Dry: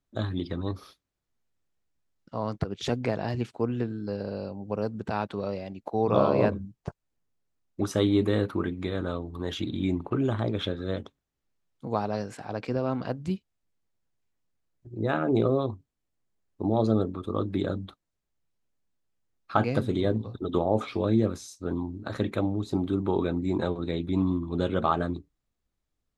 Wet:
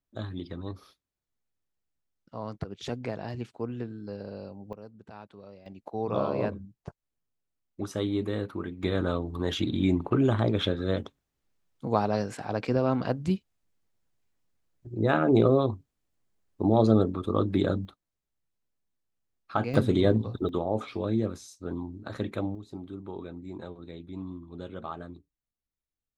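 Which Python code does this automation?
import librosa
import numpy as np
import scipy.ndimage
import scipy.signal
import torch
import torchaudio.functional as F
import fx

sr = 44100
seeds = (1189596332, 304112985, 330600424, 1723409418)

y = fx.gain(x, sr, db=fx.steps((0.0, -6.0), (4.73, -16.5), (5.66, -6.0), (8.83, 3.0), (17.85, -4.0), (19.74, 3.5), (20.49, -4.0), (22.55, -13.0)))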